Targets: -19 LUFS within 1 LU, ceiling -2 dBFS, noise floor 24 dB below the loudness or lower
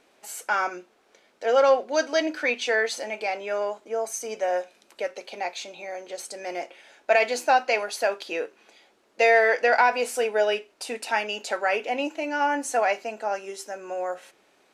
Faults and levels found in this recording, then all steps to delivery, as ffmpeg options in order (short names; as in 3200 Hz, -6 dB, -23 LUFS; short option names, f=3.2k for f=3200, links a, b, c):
loudness -25.0 LUFS; peak -9.0 dBFS; loudness target -19.0 LUFS
-> -af "volume=6dB"